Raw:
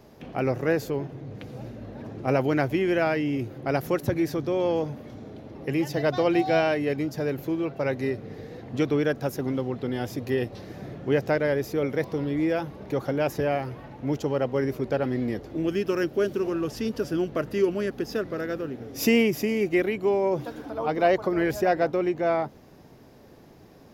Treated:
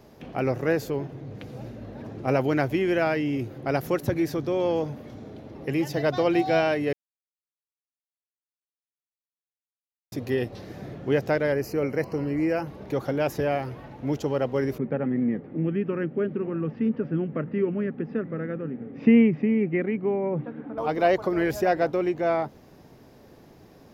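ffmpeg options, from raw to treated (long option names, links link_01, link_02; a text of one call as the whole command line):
ffmpeg -i in.wav -filter_complex "[0:a]asettb=1/sr,asplit=3[link_01][link_02][link_03];[link_01]atrim=end=11.524[link_04];[link_02]atrim=start=11.52:end=12.67,asetpts=PTS-STARTPTS,afade=type=in:duration=0.004:curve=qsin,afade=type=out:start_time=1.146:duration=0.004:curve=qsin,asuperstop=centerf=3500:order=12:qfactor=3.8[link_05];[link_03]atrim=start=12.666[link_06];[link_04][link_05]acrossfade=duration=0.004:curve1=hsin:curve2=qsin[link_07];[link_07][link_06]acrossfade=duration=0.004:curve1=qsin:curve2=hsin,asettb=1/sr,asplit=3[link_08][link_09][link_10];[link_08]atrim=end=14.784[link_11];[link_09]atrim=start=14.78:end=20.78,asetpts=PTS-STARTPTS,afade=type=in:duration=0.004:curve=qsin,afade=type=out:start_time=5.996:duration=0.004:curve=qsin,highpass=150,equalizer=frequency=160:width_type=q:width=4:gain=10,equalizer=frequency=230:width_type=q:width=4:gain=6,equalizer=frequency=360:width_type=q:width=4:gain=-4,equalizer=frequency=660:width_type=q:width=4:gain=-8,equalizer=frequency=1000:width_type=q:width=4:gain=-6,equalizer=frequency=1500:width_type=q:width=4:gain=-5,lowpass=frequency=2100:width=0.5412,lowpass=frequency=2100:width=1.3066[link_12];[link_10]atrim=start=20.776[link_13];[link_11][link_12]acrossfade=duration=0.004:curve1=hsin:curve2=qsin[link_14];[link_14][link_13]acrossfade=duration=0.004:curve1=qsin:curve2=hsin,asplit=3[link_15][link_16][link_17];[link_15]atrim=end=6.93,asetpts=PTS-STARTPTS,afade=type=out:start_time=6.926:duration=0.004:curve=hsin[link_18];[link_16]atrim=start=6.93:end=10.12,asetpts=PTS-STARTPTS,volume=0[link_19];[link_17]atrim=start=10.12,asetpts=PTS-STARTPTS,afade=type=in:duration=0.004:curve=hsin[link_20];[link_18][link_19][link_20]concat=n=3:v=0:a=1" out.wav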